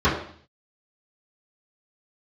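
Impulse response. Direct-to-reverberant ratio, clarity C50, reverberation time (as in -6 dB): -13.0 dB, 6.0 dB, 0.55 s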